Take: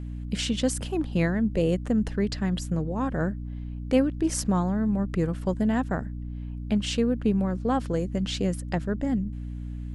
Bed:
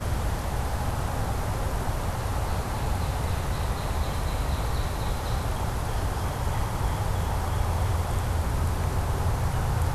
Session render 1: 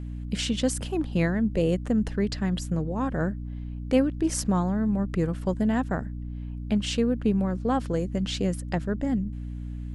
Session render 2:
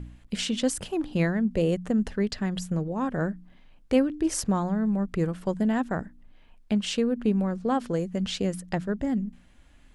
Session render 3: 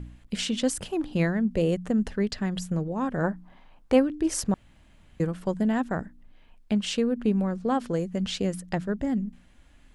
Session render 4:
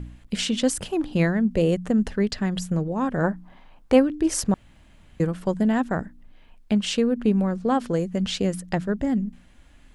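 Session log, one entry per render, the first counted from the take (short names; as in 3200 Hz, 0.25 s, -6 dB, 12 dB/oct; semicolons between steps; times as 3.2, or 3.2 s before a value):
nothing audible
de-hum 60 Hz, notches 5
3.23–3.99 bell 910 Hz +15 dB -> +8 dB 1.3 oct; 4.54–5.2 room tone
gain +3.5 dB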